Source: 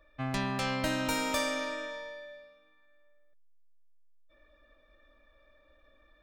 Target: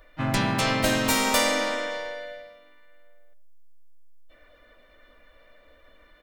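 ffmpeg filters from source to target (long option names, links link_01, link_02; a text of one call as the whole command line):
ffmpeg -i in.wav -filter_complex "[0:a]highshelf=frequency=6400:gain=7.5,asplit=3[link_01][link_02][link_03];[link_02]asetrate=37084,aresample=44100,atempo=1.18921,volume=-5dB[link_04];[link_03]asetrate=52444,aresample=44100,atempo=0.840896,volume=-10dB[link_05];[link_01][link_04][link_05]amix=inputs=3:normalize=0,asplit=2[link_06][link_07];[link_07]adelay=90,lowpass=frequency=890:poles=1,volume=-14dB,asplit=2[link_08][link_09];[link_09]adelay=90,lowpass=frequency=890:poles=1,volume=0.41,asplit=2[link_10][link_11];[link_11]adelay=90,lowpass=frequency=890:poles=1,volume=0.41,asplit=2[link_12][link_13];[link_13]adelay=90,lowpass=frequency=890:poles=1,volume=0.41[link_14];[link_08][link_10][link_12][link_14]amix=inputs=4:normalize=0[link_15];[link_06][link_15]amix=inputs=2:normalize=0,volume=6dB" out.wav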